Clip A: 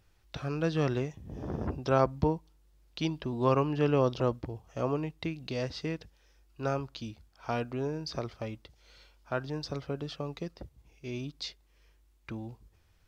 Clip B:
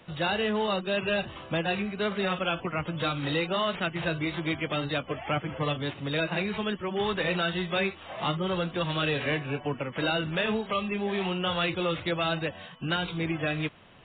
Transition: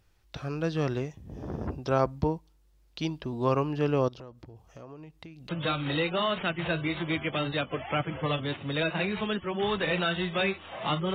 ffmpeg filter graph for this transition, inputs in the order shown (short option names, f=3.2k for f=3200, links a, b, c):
-filter_complex "[0:a]asettb=1/sr,asplit=3[a][b][c];[a]atrim=end=4.084[d];[b]atrim=start=4.08:end=5.49,asetpts=PTS-STARTPTS,afade=t=in:d=0.004:c=qsin,afade=t=out:st=1.406:d=0.004:c=qsin,acompressor=threshold=-44dB:ratio=4:attack=3.2:release=140:knee=1:detection=peak[e];[c]atrim=start=5.486[f];[d][e]acrossfade=d=0.004:c1=hsin:c2=qsin[g];[g][f]acrossfade=d=0.004:c1=qsin:c2=hsin,apad=whole_dur=11.14,atrim=end=11.14,atrim=end=5.492[h];[1:a]atrim=start=2.858:end=8.51[i];[h][i]acrossfade=d=0.004:c1=hsin:c2=hsin"